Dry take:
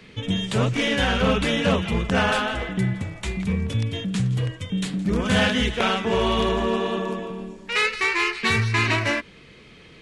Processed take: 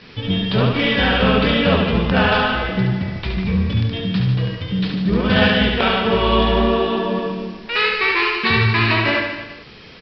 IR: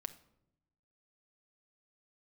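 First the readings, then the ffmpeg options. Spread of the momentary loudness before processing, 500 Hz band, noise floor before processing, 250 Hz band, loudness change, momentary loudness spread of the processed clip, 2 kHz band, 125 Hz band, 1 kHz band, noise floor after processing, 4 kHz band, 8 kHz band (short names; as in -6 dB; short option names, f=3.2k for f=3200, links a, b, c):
7 LU, +5.5 dB, -48 dBFS, +5.5 dB, +5.5 dB, 8 LU, +5.0 dB, +5.5 dB, +5.5 dB, -41 dBFS, +5.5 dB, under -15 dB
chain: -af "bandreject=f=2.1k:w=20,aresample=11025,acrusher=bits=7:mix=0:aa=0.000001,aresample=44100,aecho=1:1:70|147|231.7|324.9|427.4:0.631|0.398|0.251|0.158|0.1,volume=3.5dB"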